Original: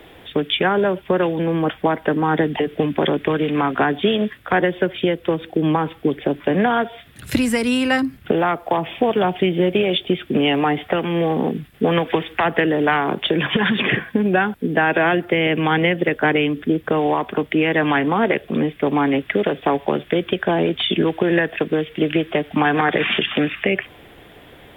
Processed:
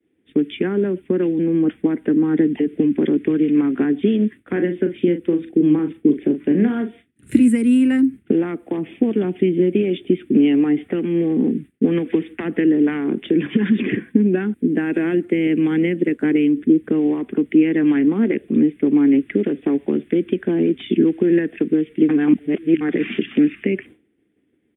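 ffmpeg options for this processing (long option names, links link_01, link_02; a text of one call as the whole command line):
ffmpeg -i in.wav -filter_complex "[0:a]asettb=1/sr,asplit=3[link_01][link_02][link_03];[link_01]atrim=end=4.524[link_04];[link_02]atrim=start=4.52:end=7.48,asetpts=PTS-STARTPTS,afade=type=in:duration=0.004:curve=qsin,afade=type=out:start_time=2.956:duration=0.004:curve=qsin,asplit=2[link_05][link_06];[link_06]adelay=40,volume=-8dB[link_07];[link_05][link_07]amix=inputs=2:normalize=0,atrim=end_sample=130536[link_08];[link_03]atrim=start=7.476[link_09];[link_04][link_08]acrossfade=duration=0.004:curve1=hsin:curve2=qsin[link_10];[link_10][link_09]acrossfade=duration=0.004:curve1=qsin:curve2=hsin,asettb=1/sr,asplit=3[link_11][link_12][link_13];[link_11]atrim=end=14.714[link_14];[link_12]atrim=start=14.71:end=16.52,asetpts=PTS-STARTPTS,afade=type=in:duration=0.004:curve=qsin,afade=type=out:start_time=1.806:duration=0.004:curve=qsin,aeval=exprs='sgn(val(0))*max(abs(val(0))-0.00376,0)':channel_layout=same[link_15];[link_13]atrim=start=16.516[link_16];[link_14][link_15]acrossfade=duration=0.004:curve1=hsin:curve2=qsin[link_17];[link_17][link_16]acrossfade=duration=0.004:curve1=qsin:curve2=hsin,asplit=3[link_18][link_19][link_20];[link_18]atrim=end=22.092[link_21];[link_19]atrim=start=22.088:end=22.812,asetpts=PTS-STARTPTS,areverse[link_22];[link_20]atrim=start=22.808[link_23];[link_21][link_22]acrossfade=duration=0.004:curve1=hsin:curve2=hsin[link_24];[link_24][link_23]acrossfade=duration=0.004:curve1=hsin:curve2=hsin,highpass=76,agate=range=-33dB:threshold=-31dB:ratio=3:detection=peak,firequalizer=gain_entry='entry(150,0);entry(220,11);entry(310,12);entry(610,-11);entry(970,-14);entry(1400,-8);entry(2100,-2);entry(4900,-20);entry(8900,5);entry(13000,-14)':delay=0.05:min_phase=1,volume=-5.5dB" out.wav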